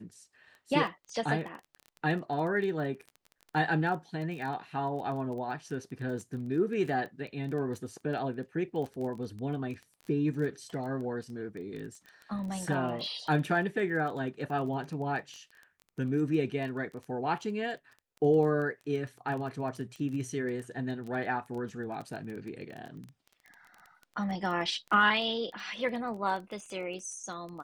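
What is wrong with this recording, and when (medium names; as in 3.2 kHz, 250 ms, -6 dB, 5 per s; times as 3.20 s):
crackle 17 per s -37 dBFS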